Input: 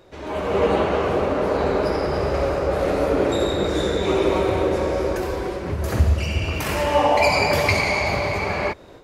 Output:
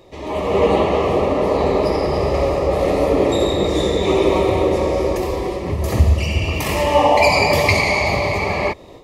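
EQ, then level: Butterworth band-stop 1.5 kHz, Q 3.1; +4.0 dB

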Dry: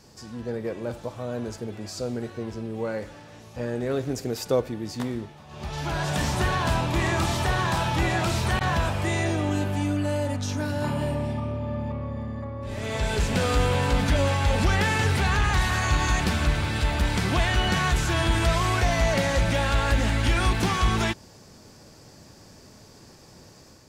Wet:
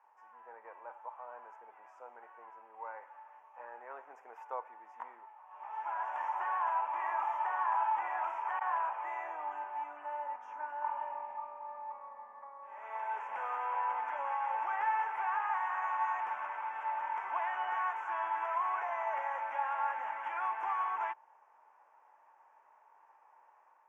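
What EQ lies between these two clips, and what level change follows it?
ladder high-pass 850 Hz, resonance 75%; Butterworth band-stop 4.2 kHz, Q 0.86; distance through air 300 m; 0.0 dB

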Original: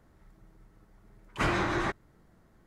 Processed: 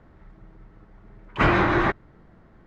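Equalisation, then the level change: low-pass 2.9 kHz 12 dB/octave; +9.0 dB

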